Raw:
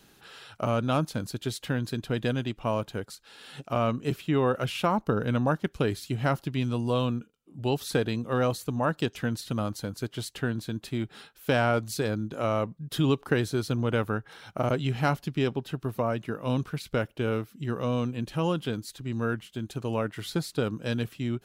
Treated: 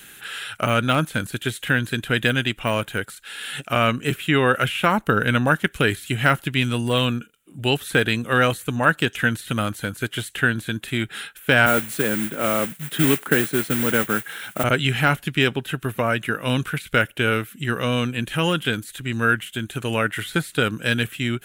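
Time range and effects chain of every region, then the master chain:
0:11.66–0:14.64: low-shelf EQ 250 Hz +5.5 dB + noise that follows the level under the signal 11 dB + high-pass filter 160 Hz 24 dB per octave
whole clip: high shelf with overshoot 6,200 Hz +13 dB, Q 1.5; de-essing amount 80%; flat-topped bell 2,300 Hz +14 dB; level +5 dB

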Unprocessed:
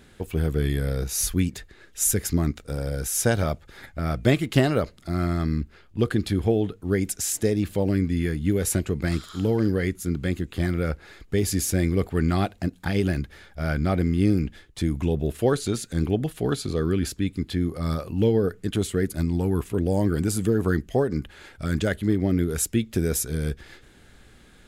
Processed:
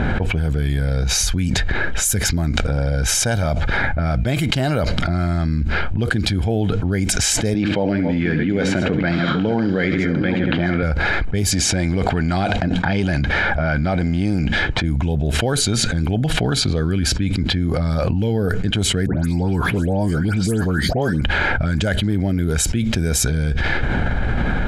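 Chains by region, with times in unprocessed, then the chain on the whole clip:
0:07.54–0:10.83: delay that plays each chunk backwards 401 ms, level −10 dB + band-pass filter 210–3,600 Hz + flutter between parallel walls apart 11.9 metres, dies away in 0.33 s
0:11.51–0:14.84: low-pass filter 9,900 Hz 24 dB per octave + low-shelf EQ 110 Hz −10.5 dB + transient designer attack −4 dB, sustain +5 dB
0:19.06–0:21.21: high-pass filter 88 Hz + all-pass dispersion highs, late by 149 ms, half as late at 2,300 Hz
whole clip: low-pass that shuts in the quiet parts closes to 1,500 Hz, open at −17 dBFS; comb filter 1.3 ms, depth 46%; envelope flattener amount 100%; level −4.5 dB

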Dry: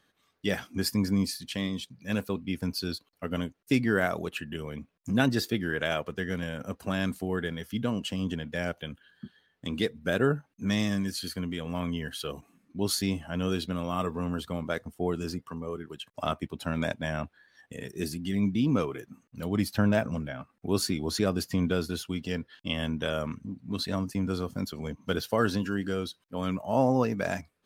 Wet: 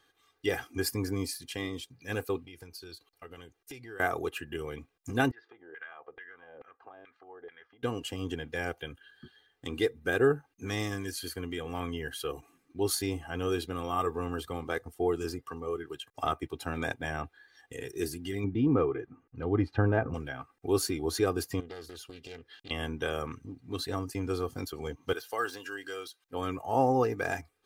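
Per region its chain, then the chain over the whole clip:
0:02.43–0:04.00: parametric band 260 Hz −7.5 dB 0.22 octaves + downward compressor 4 to 1, threshold −44 dBFS
0:05.31–0:07.83: downward compressor 10 to 1, threshold −34 dBFS + auto-filter band-pass saw down 2.3 Hz 480–2,200 Hz + high-frequency loss of the air 250 metres
0:18.44–0:20.14: low-pass filter 1,700 Hz + low-shelf EQ 420 Hz +4.5 dB
0:21.60–0:22.71: downward compressor 3 to 1, threshold −44 dBFS + highs frequency-modulated by the lows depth 0.54 ms
0:25.13–0:26.24: de-essing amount 95% + high-pass filter 1,300 Hz 6 dB per octave
whole clip: low-shelf EQ 370 Hz −4 dB; comb filter 2.5 ms, depth 78%; dynamic equaliser 3,900 Hz, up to −7 dB, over −46 dBFS, Q 0.75

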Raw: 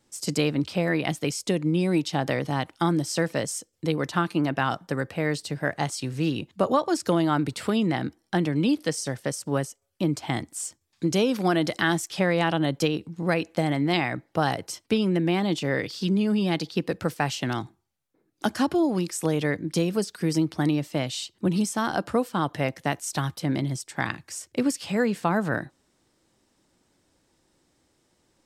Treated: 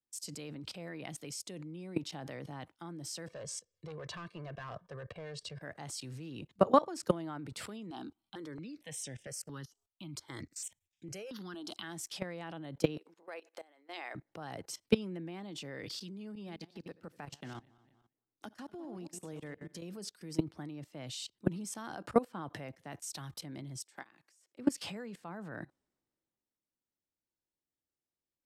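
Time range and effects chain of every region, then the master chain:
0:03.27–0:05.62: comb filter 1.8 ms, depth 85% + hard clipping −21 dBFS + high-frequency loss of the air 81 metres
0:07.90–0:11.83: parametric band 3,300 Hz +7.5 dB 1.4 octaves + step-sequenced phaser 4.4 Hz 540–4,300 Hz
0:12.97–0:14.15: downward compressor, threshold −31 dBFS + high-pass filter 420 Hz 24 dB per octave
0:16.35–0:19.82: feedback delay that plays each chunk backwards 119 ms, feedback 41%, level −10 dB + downward compressor 2.5 to 1, threshold −41 dBFS
0:23.83–0:24.59: high-pass filter 310 Hz + downward compressor 2.5 to 1, threshold −40 dBFS
whole clip: output level in coarse steps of 20 dB; multiband upward and downward expander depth 40%; level −3.5 dB

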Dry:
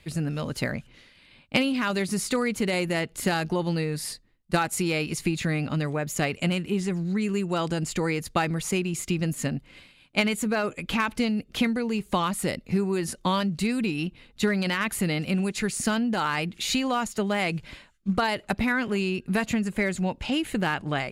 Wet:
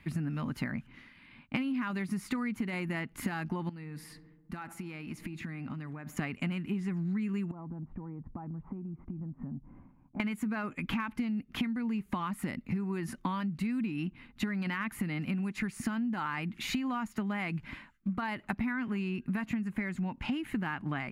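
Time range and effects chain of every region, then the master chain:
0:03.69–0:06.17: feedback echo with a low-pass in the loop 69 ms, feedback 73%, low-pass 1,900 Hz, level −20 dB + downward compressor 12 to 1, threshold −37 dBFS
0:07.51–0:10.20: Chebyshev low-pass filter 920 Hz, order 3 + low-shelf EQ 140 Hz +8 dB + downward compressor 8 to 1, threshold −39 dBFS
whole clip: graphic EQ with 10 bands 125 Hz +3 dB, 250 Hz +11 dB, 500 Hz −10 dB, 1,000 Hz +7 dB, 2,000 Hz +6 dB, 4,000 Hz −6 dB, 8,000 Hz −9 dB; downward compressor 6 to 1, threshold −27 dBFS; level −4 dB

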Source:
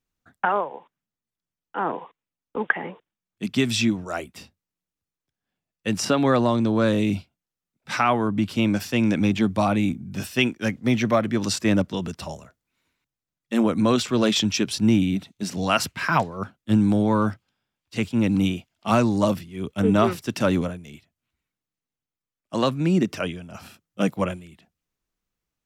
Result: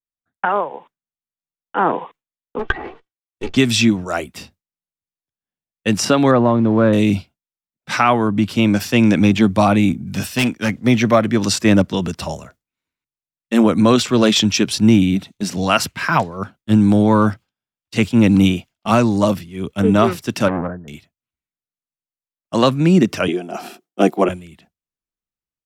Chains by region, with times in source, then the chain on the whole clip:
0:02.59–0:03.57: lower of the sound and its delayed copy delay 2.6 ms + treble cut that deepens with the level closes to 1,800 Hz, closed at −22.5 dBFS + double-tracking delay 13 ms −12 dB
0:06.31–0:06.93: one scale factor per block 5 bits + low-pass filter 1,600 Hz
0:10.07–0:10.74: parametric band 360 Hz −7.5 dB 0.23 octaves + hard clipping −20.5 dBFS + one half of a high-frequency compander encoder only
0:20.48–0:20.88: linear-phase brick-wall low-pass 1,900 Hz + low-shelf EQ 140 Hz −5.5 dB + saturating transformer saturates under 880 Hz
0:23.28–0:24.29: high-pass filter 200 Hz 24 dB per octave + hollow resonant body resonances 370/710 Hz, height 15 dB, ringing for 40 ms
whole clip: noise gate with hold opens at −40 dBFS; automatic gain control gain up to 9.5 dB

